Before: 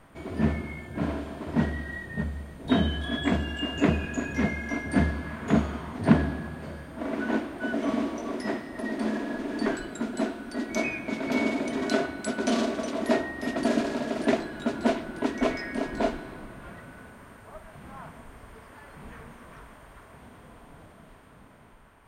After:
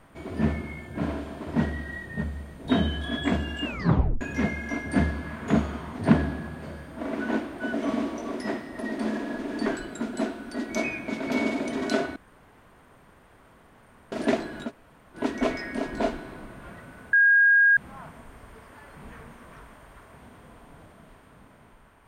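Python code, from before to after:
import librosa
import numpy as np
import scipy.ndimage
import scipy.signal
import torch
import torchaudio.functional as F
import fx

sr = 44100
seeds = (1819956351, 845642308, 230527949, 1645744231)

y = fx.edit(x, sr, fx.tape_stop(start_s=3.65, length_s=0.56),
    fx.room_tone_fill(start_s=12.16, length_s=1.96),
    fx.room_tone_fill(start_s=14.67, length_s=0.5, crossfade_s=0.1),
    fx.bleep(start_s=17.13, length_s=0.64, hz=1630.0, db=-14.5), tone=tone)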